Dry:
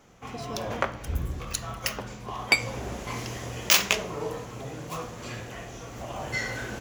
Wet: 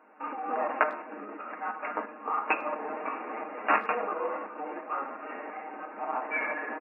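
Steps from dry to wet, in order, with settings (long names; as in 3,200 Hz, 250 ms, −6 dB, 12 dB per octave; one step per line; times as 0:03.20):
running median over 15 samples
parametric band 1,000 Hz +8 dB 1.7 octaves
mains-hum notches 60/120/180/240/300/360/420/480/540 Hz
comb filter 7.3 ms, depth 55%
shaped tremolo saw up 2.9 Hz, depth 45%
brick-wall band-pass 180–2,500 Hz
pitch shifter +2 semitones
far-end echo of a speakerphone 100 ms, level −25 dB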